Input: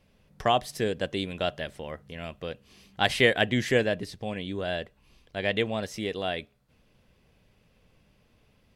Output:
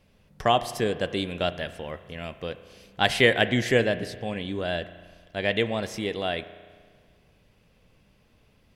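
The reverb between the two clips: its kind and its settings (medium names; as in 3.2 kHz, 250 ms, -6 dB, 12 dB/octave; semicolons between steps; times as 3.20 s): spring tank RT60 1.7 s, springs 34 ms, chirp 60 ms, DRR 13 dB; trim +2 dB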